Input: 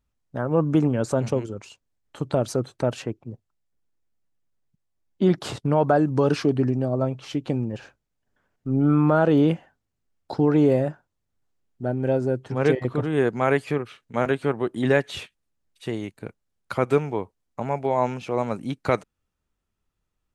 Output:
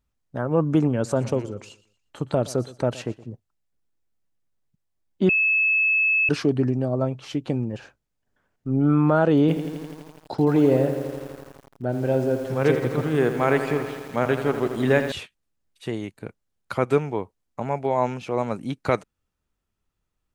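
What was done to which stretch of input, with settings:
0.93–3.29 feedback echo 0.119 s, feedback 34%, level -19 dB
5.29–6.29 bleep 2600 Hz -17 dBFS
9.4–15.12 lo-fi delay 83 ms, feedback 80%, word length 7-bit, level -9.5 dB

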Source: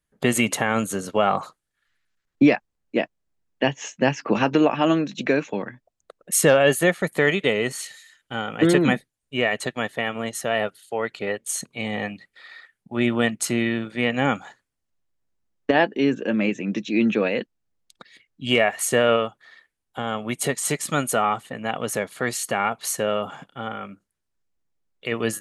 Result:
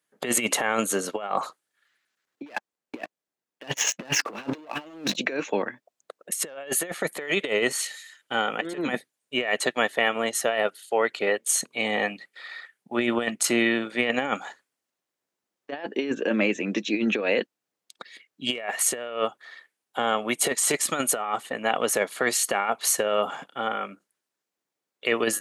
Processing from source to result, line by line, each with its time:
2.46–5.16 sample leveller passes 3
whole clip: HPF 320 Hz 12 dB/oct; negative-ratio compressor -25 dBFS, ratio -0.5

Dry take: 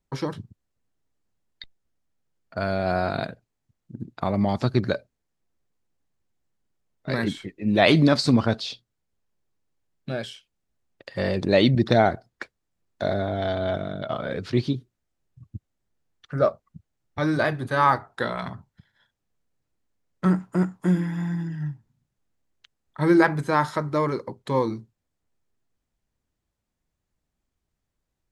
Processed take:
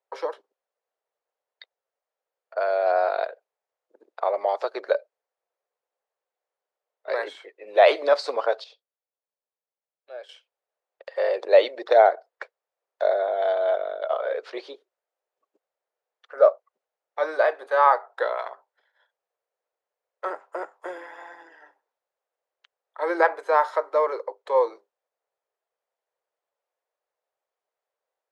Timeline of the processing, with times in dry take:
8.64–10.29 gain -11 dB
whole clip: steep high-pass 480 Hz 48 dB/oct; tilt -4.5 dB/oct; gain +2 dB

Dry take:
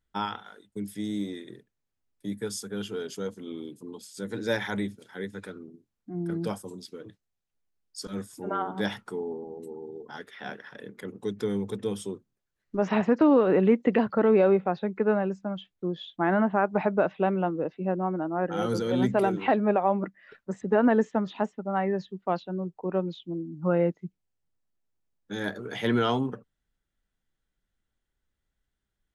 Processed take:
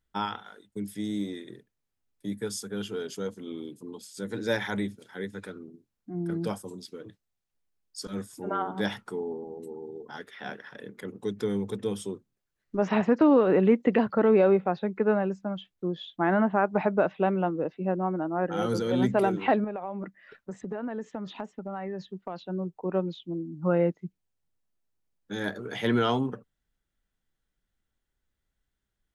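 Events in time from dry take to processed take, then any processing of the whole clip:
19.64–22.47 compressor, threshold -31 dBFS

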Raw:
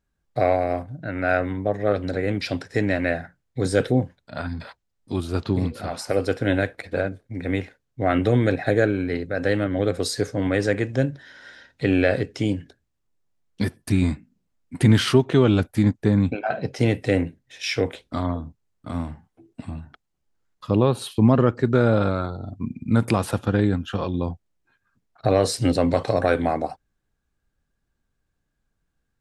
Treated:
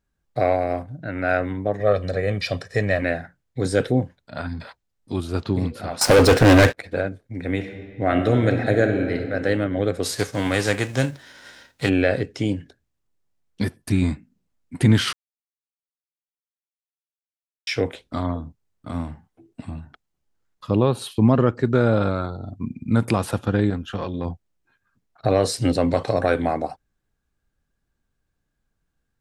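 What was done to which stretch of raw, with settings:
1.8–3.02 comb 1.7 ms
6.01–6.77 sample leveller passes 5
7.52–9.33 reverb throw, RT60 2.1 s, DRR 6 dB
10.03–11.88 spectral whitening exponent 0.6
15.13–17.67 mute
23.7–24.25 tube stage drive 17 dB, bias 0.35

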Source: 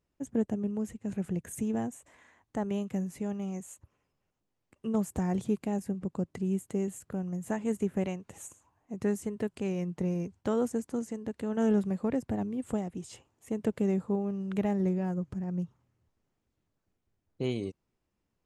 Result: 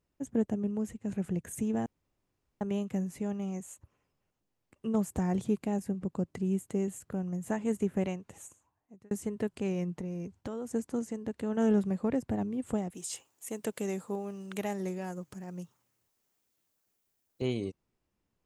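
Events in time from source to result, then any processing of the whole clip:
1.86–2.61 room tone
8.11–9.11 fade out
10–10.74 compressor, threshold -34 dBFS
12.9–17.42 RIAA curve recording

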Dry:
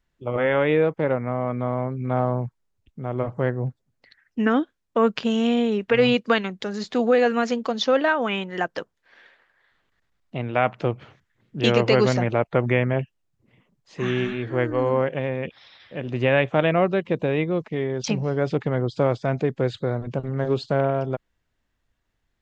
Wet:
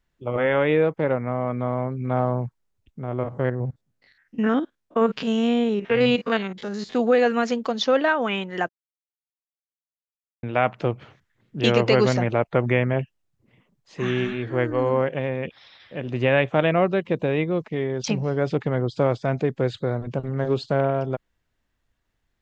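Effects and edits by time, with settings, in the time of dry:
3.03–6.95 stepped spectrum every 50 ms
8.69–10.43 mute

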